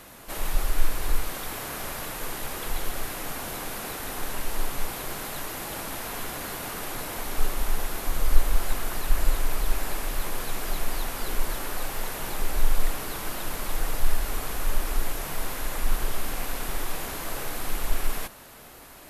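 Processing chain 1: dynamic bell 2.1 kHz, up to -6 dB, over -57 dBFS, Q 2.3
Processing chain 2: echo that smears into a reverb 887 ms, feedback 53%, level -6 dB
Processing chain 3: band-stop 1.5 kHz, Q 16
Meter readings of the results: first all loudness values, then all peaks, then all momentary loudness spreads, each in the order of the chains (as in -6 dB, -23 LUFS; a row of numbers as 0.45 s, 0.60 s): -32.5 LUFS, -31.0 LUFS, -32.5 LUFS; -3.0 dBFS, -2.0 dBFS, -3.0 dBFS; 4 LU, 3 LU, 3 LU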